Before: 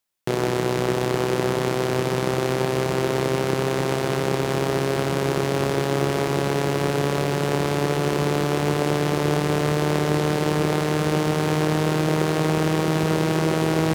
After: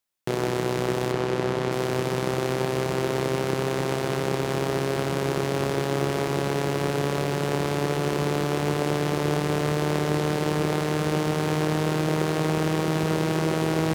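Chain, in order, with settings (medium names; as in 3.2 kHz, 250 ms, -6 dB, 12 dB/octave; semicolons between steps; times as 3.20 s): 1.12–1.72 s: treble shelf 8 kHz -11.5 dB; trim -3 dB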